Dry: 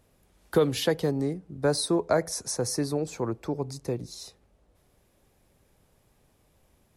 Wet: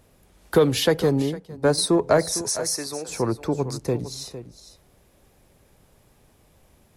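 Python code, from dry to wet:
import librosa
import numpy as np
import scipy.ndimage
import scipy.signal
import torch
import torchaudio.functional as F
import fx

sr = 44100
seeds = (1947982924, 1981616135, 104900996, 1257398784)

p1 = fx.highpass(x, sr, hz=1400.0, slope=6, at=(2.49, 3.09))
p2 = 10.0 ** (-23.5 / 20.0) * np.tanh(p1 / 10.0 ** (-23.5 / 20.0))
p3 = p1 + (p2 * 10.0 ** (-5.0 / 20.0))
p4 = p3 + 10.0 ** (-13.0 / 20.0) * np.pad(p3, (int(456 * sr / 1000.0), 0))[:len(p3)]
p5 = fx.upward_expand(p4, sr, threshold_db=-35.0, expansion=1.5, at=(1.22, 1.78))
y = p5 * 10.0 ** (3.0 / 20.0)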